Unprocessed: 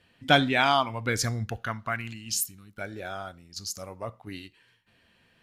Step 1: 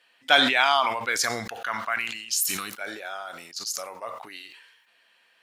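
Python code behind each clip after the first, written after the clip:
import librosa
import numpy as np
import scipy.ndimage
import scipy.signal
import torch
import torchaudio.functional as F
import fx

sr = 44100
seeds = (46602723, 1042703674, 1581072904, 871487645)

y = scipy.signal.sosfilt(scipy.signal.butter(2, 730.0, 'highpass', fs=sr, output='sos'), x)
y = fx.sustainer(y, sr, db_per_s=51.0)
y = F.gain(torch.from_numpy(y), 3.0).numpy()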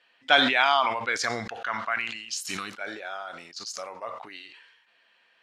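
y = fx.air_absorb(x, sr, metres=95.0)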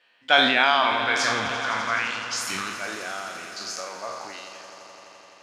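y = fx.spec_trails(x, sr, decay_s=0.61)
y = fx.echo_swell(y, sr, ms=85, loudest=5, wet_db=-16.5)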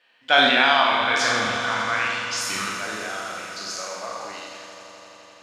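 y = fx.rev_schroeder(x, sr, rt60_s=1.2, comb_ms=29, drr_db=1.5)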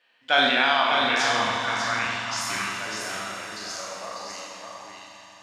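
y = x + 10.0 ** (-5.0 / 20.0) * np.pad(x, (int(596 * sr / 1000.0), 0))[:len(x)]
y = F.gain(torch.from_numpy(y), -3.5).numpy()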